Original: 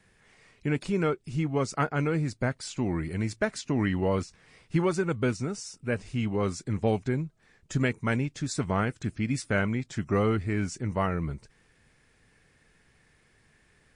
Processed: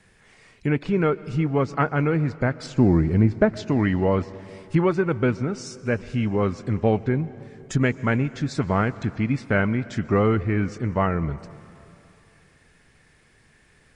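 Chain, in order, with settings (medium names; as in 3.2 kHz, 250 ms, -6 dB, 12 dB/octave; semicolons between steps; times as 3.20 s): low-pass that closes with the level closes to 2.6 kHz, closed at -26 dBFS; 2.66–3.57 s: tilt shelf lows +7 dB, about 1.1 kHz; plate-style reverb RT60 3 s, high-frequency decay 0.9×, pre-delay 105 ms, DRR 17.5 dB; trim +5.5 dB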